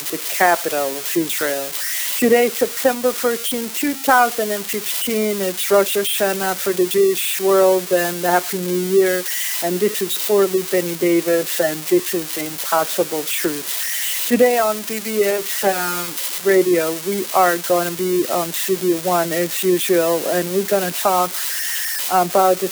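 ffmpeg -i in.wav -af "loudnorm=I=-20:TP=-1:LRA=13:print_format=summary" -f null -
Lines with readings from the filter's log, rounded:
Input Integrated:    -18.0 LUFS
Input True Peak:      -3.3 dBTP
Input LRA:             1.5 LU
Input Threshold:     -28.0 LUFS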